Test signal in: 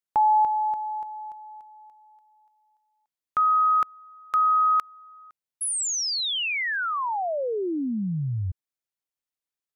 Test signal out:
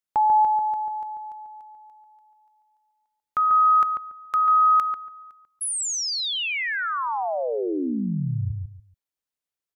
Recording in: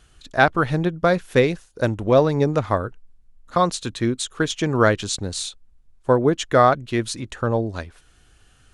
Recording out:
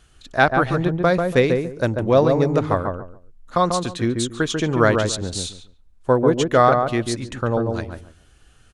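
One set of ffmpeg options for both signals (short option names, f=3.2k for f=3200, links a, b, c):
-filter_complex "[0:a]asplit=2[a][b];[b]adelay=142,lowpass=f=1.1k:p=1,volume=-3.5dB,asplit=2[c][d];[d]adelay=142,lowpass=f=1.1k:p=1,volume=0.24,asplit=2[e][f];[f]adelay=142,lowpass=f=1.1k:p=1,volume=0.24[g];[a][c][e][g]amix=inputs=4:normalize=0"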